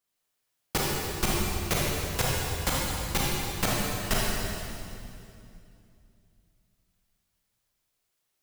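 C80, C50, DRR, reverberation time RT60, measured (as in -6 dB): -1.0 dB, -3.5 dB, -5.5 dB, 2.6 s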